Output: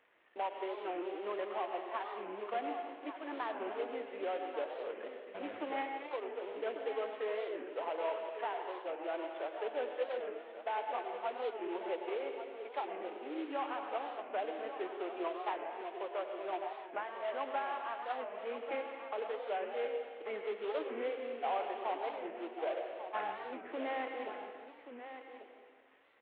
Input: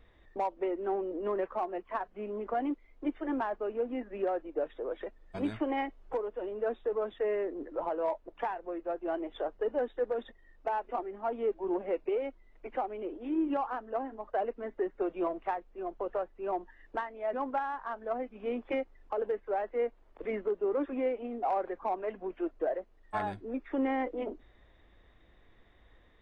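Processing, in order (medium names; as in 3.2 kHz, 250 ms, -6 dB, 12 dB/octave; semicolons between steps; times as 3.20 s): CVSD coder 16 kbps; high-pass 450 Hz 12 dB/octave; delay 1141 ms -10.5 dB; on a send at -4 dB: reverberation RT60 1.8 s, pre-delay 89 ms; on the sum: warped record 45 rpm, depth 160 cents; trim -4 dB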